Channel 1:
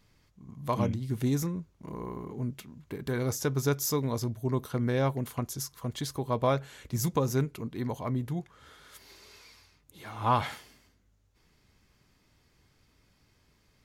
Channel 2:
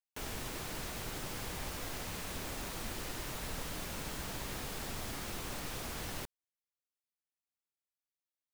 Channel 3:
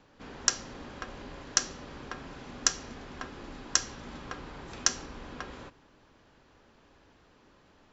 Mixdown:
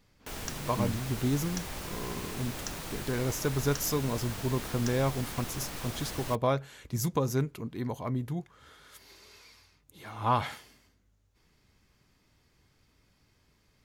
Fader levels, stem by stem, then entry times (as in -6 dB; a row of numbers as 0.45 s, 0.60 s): -1.0 dB, +1.5 dB, -15.5 dB; 0.00 s, 0.10 s, 0.00 s